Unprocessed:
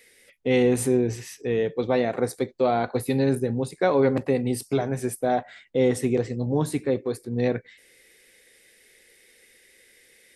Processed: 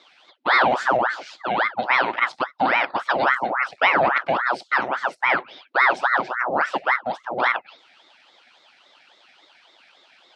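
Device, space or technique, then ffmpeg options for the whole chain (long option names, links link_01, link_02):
voice changer toy: -af "aeval=exprs='val(0)*sin(2*PI*960*n/s+960*0.75/3.6*sin(2*PI*3.6*n/s))':channel_layout=same,highpass=410,equalizer=frequency=440:width_type=q:width=4:gain=-8,equalizer=frequency=1100:width_type=q:width=4:gain=-5,equalizer=frequency=1800:width_type=q:width=4:gain=-3,lowpass=frequency=4500:width=0.5412,lowpass=frequency=4500:width=1.3066,volume=8.5dB"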